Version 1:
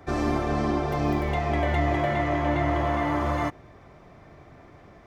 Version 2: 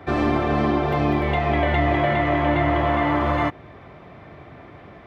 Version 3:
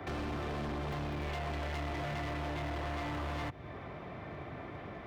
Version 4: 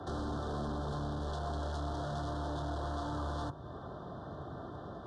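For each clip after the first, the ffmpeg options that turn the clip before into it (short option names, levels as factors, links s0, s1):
-filter_complex "[0:a]highpass=65,highshelf=f=4500:t=q:w=1.5:g=-9.5,asplit=2[s0][s1];[s1]alimiter=limit=0.0891:level=0:latency=1:release=256,volume=0.841[s2];[s0][s2]amix=inputs=2:normalize=0,volume=1.19"
-filter_complex "[0:a]acrossover=split=150|3500[s0][s1][s2];[s0]acompressor=threshold=0.0282:ratio=4[s3];[s1]acompressor=threshold=0.0251:ratio=4[s4];[s2]acompressor=threshold=0.00282:ratio=4[s5];[s3][s4][s5]amix=inputs=3:normalize=0,asoftclip=type=hard:threshold=0.02,volume=0.841"
-af "asuperstop=centerf=2300:order=8:qfactor=1.3,bandreject=f=50.34:t=h:w=4,bandreject=f=100.68:t=h:w=4,bandreject=f=151.02:t=h:w=4,bandreject=f=201.36:t=h:w=4,bandreject=f=251.7:t=h:w=4,bandreject=f=302.04:t=h:w=4,bandreject=f=352.38:t=h:w=4,bandreject=f=402.72:t=h:w=4,bandreject=f=453.06:t=h:w=4,bandreject=f=503.4:t=h:w=4,bandreject=f=553.74:t=h:w=4,bandreject=f=604.08:t=h:w=4,bandreject=f=654.42:t=h:w=4,bandreject=f=704.76:t=h:w=4,bandreject=f=755.1:t=h:w=4,bandreject=f=805.44:t=h:w=4,bandreject=f=855.78:t=h:w=4,bandreject=f=906.12:t=h:w=4,bandreject=f=956.46:t=h:w=4,bandreject=f=1006.8:t=h:w=4,bandreject=f=1057.14:t=h:w=4,bandreject=f=1107.48:t=h:w=4,bandreject=f=1157.82:t=h:w=4,bandreject=f=1208.16:t=h:w=4,bandreject=f=1258.5:t=h:w=4,bandreject=f=1308.84:t=h:w=4,bandreject=f=1359.18:t=h:w=4,bandreject=f=1409.52:t=h:w=4,bandreject=f=1459.86:t=h:w=4,bandreject=f=1510.2:t=h:w=4,bandreject=f=1560.54:t=h:w=4,bandreject=f=1610.88:t=h:w=4,volume=1.12" -ar 22050 -c:a aac -b:a 96k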